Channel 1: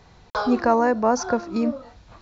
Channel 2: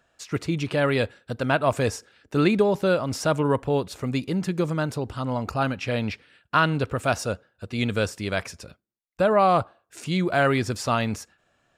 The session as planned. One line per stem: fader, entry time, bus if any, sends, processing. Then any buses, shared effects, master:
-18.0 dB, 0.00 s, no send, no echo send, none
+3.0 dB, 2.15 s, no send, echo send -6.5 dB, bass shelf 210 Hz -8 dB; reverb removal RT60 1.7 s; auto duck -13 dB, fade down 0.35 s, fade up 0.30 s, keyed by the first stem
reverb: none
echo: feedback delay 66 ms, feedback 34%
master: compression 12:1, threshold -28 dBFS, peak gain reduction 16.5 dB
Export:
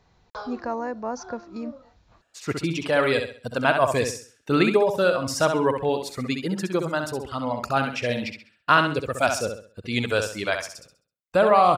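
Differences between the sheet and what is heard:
stem 1 -18.0 dB -> -10.5 dB; master: missing compression 12:1, threshold -28 dBFS, peak gain reduction 16.5 dB

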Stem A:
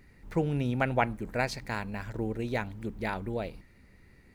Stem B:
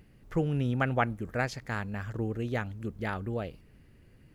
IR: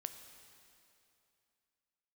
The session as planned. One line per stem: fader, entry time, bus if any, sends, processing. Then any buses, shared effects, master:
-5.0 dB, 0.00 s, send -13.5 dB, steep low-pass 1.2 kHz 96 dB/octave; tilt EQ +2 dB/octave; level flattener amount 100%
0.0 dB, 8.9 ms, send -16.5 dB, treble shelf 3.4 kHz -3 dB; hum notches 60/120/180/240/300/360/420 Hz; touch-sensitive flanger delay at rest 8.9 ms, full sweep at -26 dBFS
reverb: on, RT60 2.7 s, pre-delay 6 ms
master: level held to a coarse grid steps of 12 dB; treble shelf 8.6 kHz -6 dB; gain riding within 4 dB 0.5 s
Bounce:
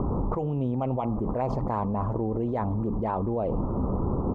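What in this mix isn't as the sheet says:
stem B 0.0 dB -> -9.0 dB; master: missing level held to a coarse grid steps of 12 dB

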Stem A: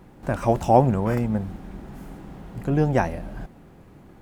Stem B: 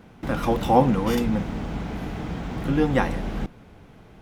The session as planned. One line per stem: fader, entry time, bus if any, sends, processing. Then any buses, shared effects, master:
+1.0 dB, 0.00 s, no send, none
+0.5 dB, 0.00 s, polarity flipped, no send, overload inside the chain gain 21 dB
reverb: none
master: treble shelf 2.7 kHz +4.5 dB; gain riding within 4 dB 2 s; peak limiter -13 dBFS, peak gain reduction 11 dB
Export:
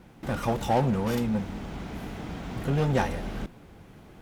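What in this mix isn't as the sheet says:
stem A +1.0 dB -> -8.0 dB; stem B +0.5 dB -> -7.5 dB

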